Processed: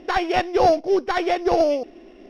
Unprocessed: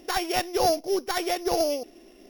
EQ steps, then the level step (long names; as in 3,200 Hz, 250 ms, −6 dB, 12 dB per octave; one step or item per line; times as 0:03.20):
low-pass filter 2,800 Hz 12 dB per octave
+6.5 dB